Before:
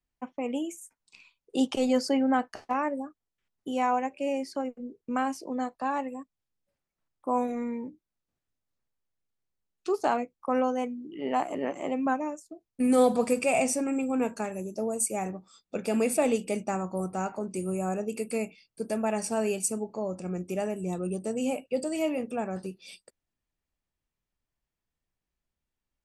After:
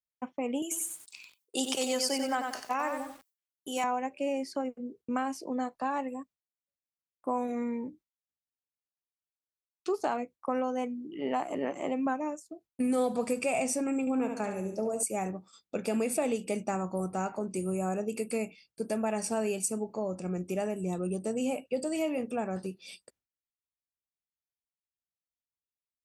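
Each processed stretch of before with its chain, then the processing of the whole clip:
0.62–3.84 RIAA curve recording + lo-fi delay 93 ms, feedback 35%, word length 8-bit, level -6 dB
14–15.03 high shelf 7800 Hz -8.5 dB + flutter echo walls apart 11.9 m, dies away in 0.56 s
whole clip: gate with hold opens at -47 dBFS; HPF 48 Hz; compressor 3:1, threshold -27 dBFS

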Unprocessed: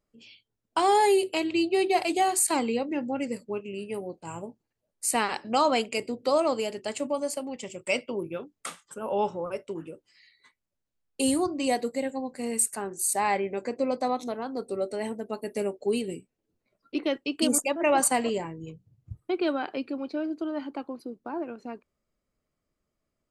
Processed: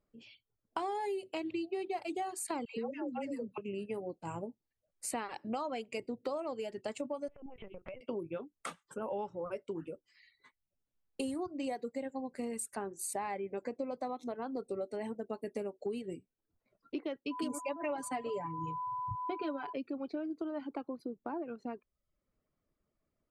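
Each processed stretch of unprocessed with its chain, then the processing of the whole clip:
2.65–3.58 HPF 210 Hz 6 dB/oct + dispersion lows, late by 0.126 s, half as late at 710 Hz
7.28–8.01 LPF 2700 Hz 24 dB/oct + LPC vocoder at 8 kHz pitch kept + compressor 16:1, threshold -40 dBFS
17.3–19.72 whine 1000 Hz -36 dBFS + comb 7 ms, depth 75%
whole clip: reverb removal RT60 0.51 s; high shelf 3100 Hz -11.5 dB; compressor 6:1, threshold -35 dBFS

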